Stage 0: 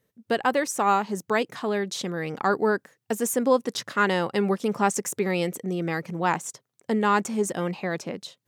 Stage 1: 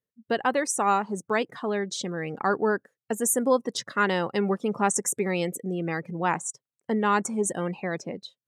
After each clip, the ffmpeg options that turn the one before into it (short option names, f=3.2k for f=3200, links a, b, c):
-af "afftdn=nr=18:nf=-40,adynamicequalizer=threshold=0.00355:dfrequency=9400:dqfactor=1.1:tfrequency=9400:tqfactor=1.1:attack=5:release=100:ratio=0.375:range=4:mode=boostabove:tftype=bell,volume=-1.5dB"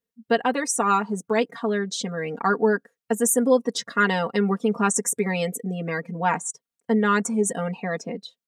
-af "aecho=1:1:4.3:0.95"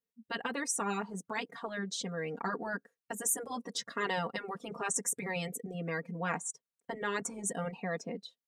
-af "afftfilt=real='re*lt(hypot(re,im),0.501)':imag='im*lt(hypot(re,im),0.501)':win_size=1024:overlap=0.75,volume=-8dB"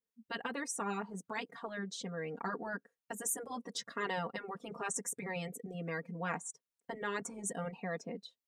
-af "adynamicequalizer=threshold=0.00355:dfrequency=2600:dqfactor=0.7:tfrequency=2600:tqfactor=0.7:attack=5:release=100:ratio=0.375:range=3:mode=cutabove:tftype=highshelf,volume=-3dB"